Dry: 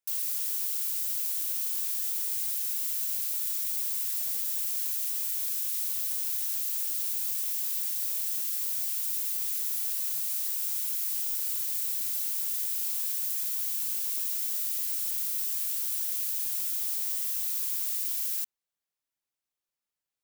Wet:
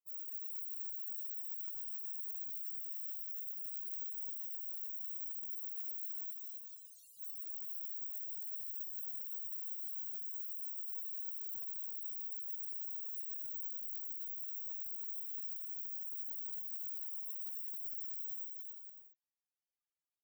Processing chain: 6.31–7.2 RIAA curve playback; in parallel at -1 dB: limiter -25.5 dBFS, peak gain reduction 8 dB; on the sum: loudest bins only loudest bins 8; notch comb 160 Hz; on a send: bouncing-ball echo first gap 0.27 s, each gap 0.65×, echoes 5; on the sum: gain -2.5 dB

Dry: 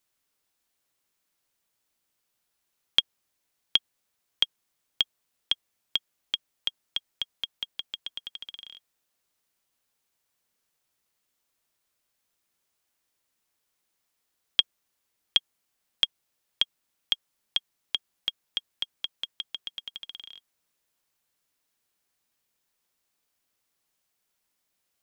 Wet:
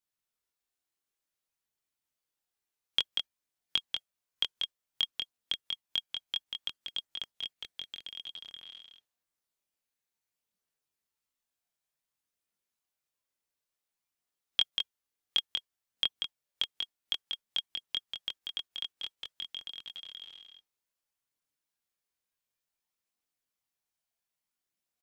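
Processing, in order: echo 0.189 s -5 dB; spectral noise reduction 7 dB; chorus voices 2, 0.28 Hz, delay 23 ms, depth 1.4 ms; gain -2 dB

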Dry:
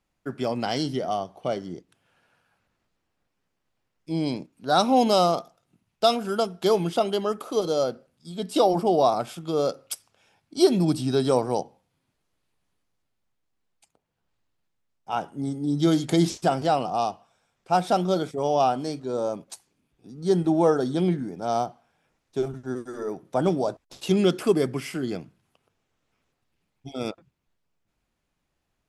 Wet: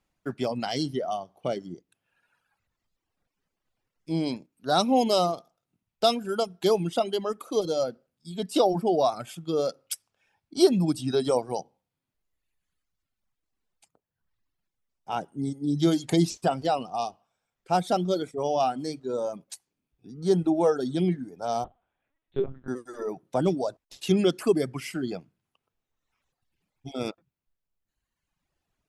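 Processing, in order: reverb removal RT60 1.4 s; dynamic EQ 1200 Hz, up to -4 dB, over -32 dBFS, Q 0.75; 21.64–22.68 LPC vocoder at 8 kHz pitch kept

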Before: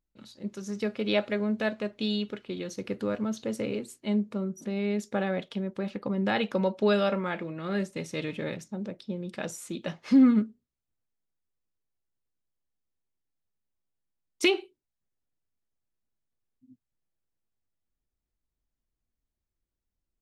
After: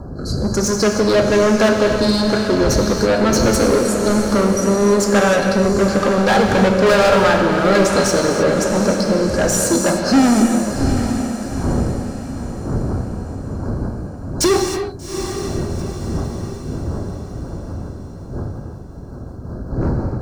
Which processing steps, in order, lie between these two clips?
wind noise 84 Hz -36 dBFS; rotary speaker horn 1.1 Hz, later 5.5 Hz, at 12.11; FFT band-reject 1700–4000 Hz; overdrive pedal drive 32 dB, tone 7500 Hz, clips at -12 dBFS; diffused feedback echo 0.792 s, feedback 45%, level -8 dB; non-linear reverb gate 0.34 s flat, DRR 3 dB; gain +4.5 dB

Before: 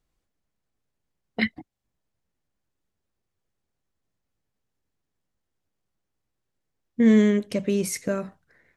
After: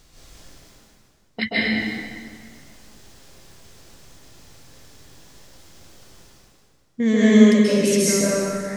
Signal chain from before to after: bell 5200 Hz +8 dB 1.7 oct; reverse; upward compressor, threshold -29 dBFS; reverse; plate-style reverb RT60 2 s, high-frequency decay 0.75×, pre-delay 0.12 s, DRR -9 dB; gain -3 dB

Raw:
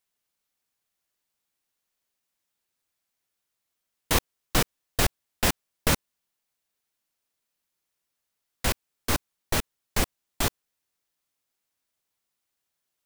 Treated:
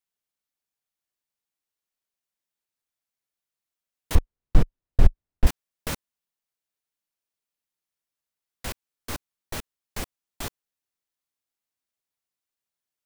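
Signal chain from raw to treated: 4.15–5.47 tilt -4.5 dB/oct; gain -8 dB

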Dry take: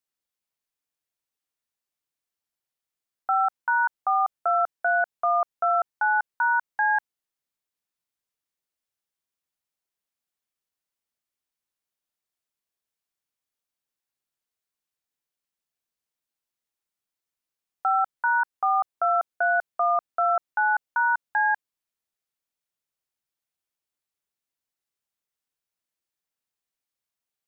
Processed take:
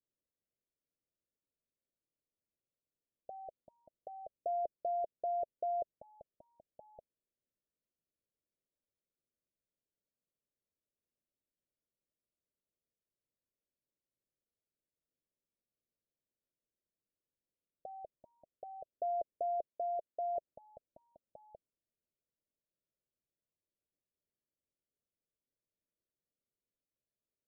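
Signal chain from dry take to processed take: steep low-pass 640 Hz 96 dB/oct; 19.68–20.36 tilt +2.5 dB/oct; gain +2 dB

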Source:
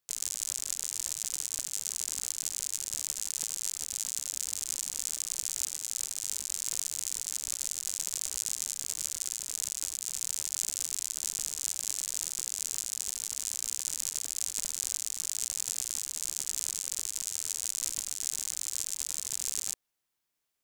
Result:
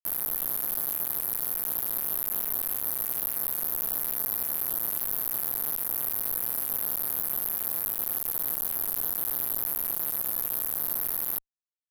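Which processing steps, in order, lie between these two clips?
RIAA curve recording; speed mistake 45 rpm record played at 78 rpm; ring modulator 160 Hz; fuzz box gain 36 dB, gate -43 dBFS; gain -3 dB

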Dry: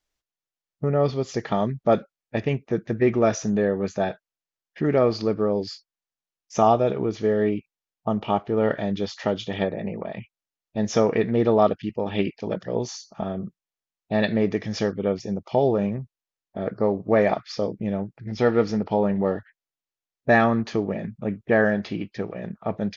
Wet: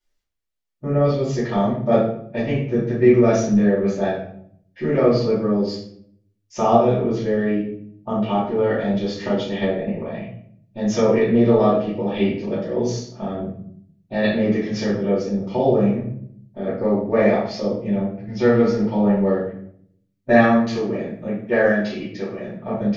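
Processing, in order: 20.39–22.54 tone controls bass -6 dB, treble +6 dB; shoebox room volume 100 m³, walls mixed, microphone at 2.6 m; gain -8 dB

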